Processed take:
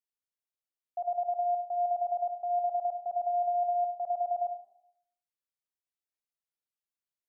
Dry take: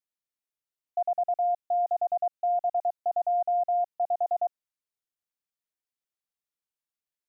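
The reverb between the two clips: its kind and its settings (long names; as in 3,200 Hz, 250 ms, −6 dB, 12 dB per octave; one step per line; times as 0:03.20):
comb and all-pass reverb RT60 0.7 s, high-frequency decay 0.4×, pre-delay 20 ms, DRR 8 dB
level −7 dB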